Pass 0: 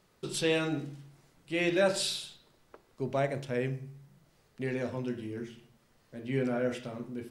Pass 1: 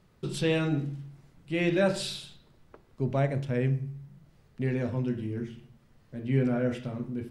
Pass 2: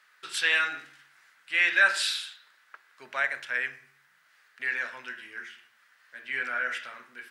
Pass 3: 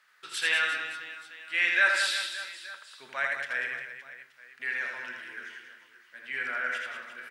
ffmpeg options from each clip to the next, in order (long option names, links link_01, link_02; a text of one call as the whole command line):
ffmpeg -i in.wav -af "bass=frequency=250:gain=10,treble=frequency=4000:gain=-5" out.wav
ffmpeg -i in.wav -af "highpass=frequency=1600:width_type=q:width=3.6,volume=5.5dB" out.wav
ffmpeg -i in.wav -af "aecho=1:1:80|192|348.8|568.3|875.6:0.631|0.398|0.251|0.158|0.1,volume=-3dB" out.wav